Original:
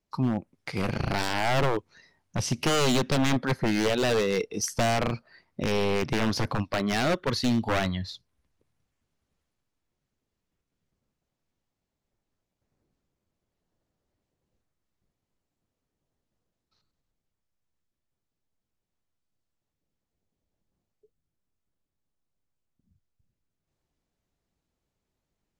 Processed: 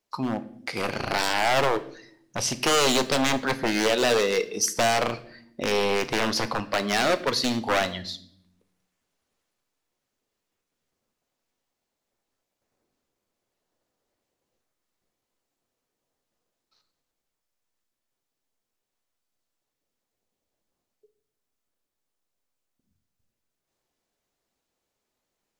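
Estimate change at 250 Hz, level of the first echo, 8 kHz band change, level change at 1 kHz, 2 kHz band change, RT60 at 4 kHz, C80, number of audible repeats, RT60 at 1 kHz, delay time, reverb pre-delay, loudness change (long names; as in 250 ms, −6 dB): −1.5 dB, no echo audible, +6.0 dB, +4.0 dB, +4.5 dB, 0.55 s, 19.5 dB, no echo audible, 0.55 s, no echo audible, 4 ms, +2.5 dB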